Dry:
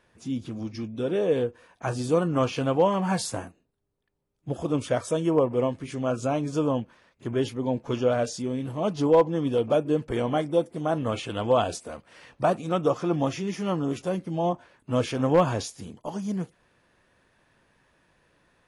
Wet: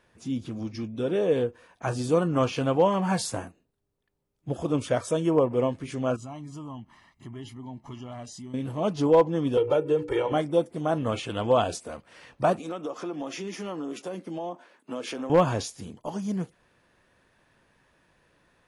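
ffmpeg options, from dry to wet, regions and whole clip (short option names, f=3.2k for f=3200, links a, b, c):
-filter_complex "[0:a]asettb=1/sr,asplit=3[a][b][c];[a]atrim=end=6.164[d];[b]atrim=start=6.16:end=8.54,asetpts=PTS-STARTPTS,afade=t=in:d=0.004:c=qsin,afade=t=out:st=2.376:d=0.004:c=qsin,aecho=1:1:1:0.84,atrim=end_sample=104958,acompressor=threshold=-48dB:ratio=2:attack=3.2:release=140:knee=1:detection=peak[e];[c]atrim=start=8.536[f];[d][e]acrossfade=d=0.004:c1=hsin:c2=qsin[g];[g][f]acrossfade=d=0.004:c1=qsin:c2=hsin,asettb=1/sr,asplit=3[h][i][j];[h]atrim=end=9.574[k];[i]atrim=start=9.57:end=10.32,asetpts=PTS-STARTPTS,afade=t=in:d=0.004:c=qsin,afade=t=out:st=0.746:d=0.004:c=qsin,bandreject=f=60:t=h:w=6,bandreject=f=120:t=h:w=6,bandreject=f=180:t=h:w=6,bandreject=f=240:t=h:w=6,bandreject=f=300:t=h:w=6,bandreject=f=360:t=h:w=6,bandreject=f=420:t=h:w=6,bandreject=f=480:t=h:w=6,bandreject=f=540:t=h:w=6,aecho=1:1:2.2:0.99,atrim=end_sample=33075,acrossover=split=110|220|3600[l][m][n][o];[l]acompressor=threshold=-51dB:ratio=3[p];[m]acompressor=threshold=-41dB:ratio=3[q];[n]acompressor=threshold=-20dB:ratio=3[r];[o]acompressor=threshold=-59dB:ratio=3[s];[p][q][r][s]amix=inputs=4:normalize=0[t];[j]atrim=start=10.316[u];[k][t]acrossfade=d=0.004:c1=hsin:c2=qsin[v];[v][u]acrossfade=d=0.004:c1=qsin:c2=hsin,asettb=1/sr,asplit=3[w][x][y];[w]atrim=end=12.594[z];[x]atrim=start=12.59:end=15.3,asetpts=PTS-STARTPTS,afade=t=in:d=0.004:c=qsin,afade=t=out:st=2.706:d=0.004:c=qsin,highpass=f=220:w=0.5412,highpass=f=220:w=1.3066,acompressor=threshold=-30dB:ratio=5:attack=3.2:release=140:knee=1:detection=peak[aa];[y]atrim=start=15.296[ab];[z][aa]acrossfade=d=0.004:c1=hsin:c2=qsin[ac];[ac][ab]acrossfade=d=0.004:c1=qsin:c2=hsin"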